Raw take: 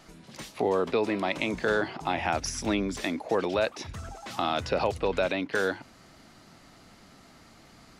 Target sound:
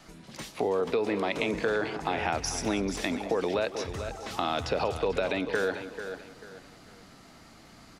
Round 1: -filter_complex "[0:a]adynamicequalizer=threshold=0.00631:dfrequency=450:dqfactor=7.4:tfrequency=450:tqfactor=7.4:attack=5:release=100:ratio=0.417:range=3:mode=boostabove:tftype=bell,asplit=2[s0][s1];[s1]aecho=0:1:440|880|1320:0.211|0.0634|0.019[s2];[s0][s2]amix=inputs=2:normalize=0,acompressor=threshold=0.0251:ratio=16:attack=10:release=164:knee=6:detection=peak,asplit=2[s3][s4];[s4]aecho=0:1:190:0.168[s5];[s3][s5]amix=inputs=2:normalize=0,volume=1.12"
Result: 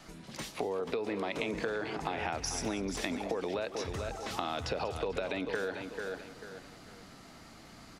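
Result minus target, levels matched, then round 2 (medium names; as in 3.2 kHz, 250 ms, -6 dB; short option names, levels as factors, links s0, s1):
compression: peak gain reduction +7.5 dB
-filter_complex "[0:a]adynamicequalizer=threshold=0.00631:dfrequency=450:dqfactor=7.4:tfrequency=450:tqfactor=7.4:attack=5:release=100:ratio=0.417:range=3:mode=boostabove:tftype=bell,asplit=2[s0][s1];[s1]aecho=0:1:440|880|1320:0.211|0.0634|0.019[s2];[s0][s2]amix=inputs=2:normalize=0,acompressor=threshold=0.0631:ratio=16:attack=10:release=164:knee=6:detection=peak,asplit=2[s3][s4];[s4]aecho=0:1:190:0.168[s5];[s3][s5]amix=inputs=2:normalize=0,volume=1.12"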